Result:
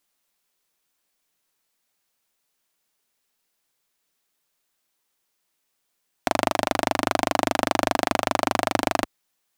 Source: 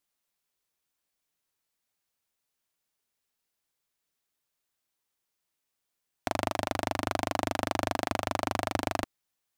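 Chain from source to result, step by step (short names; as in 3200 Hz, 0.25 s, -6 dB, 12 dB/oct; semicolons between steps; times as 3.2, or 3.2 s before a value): bell 76 Hz -13.5 dB 0.87 oct; gain +8 dB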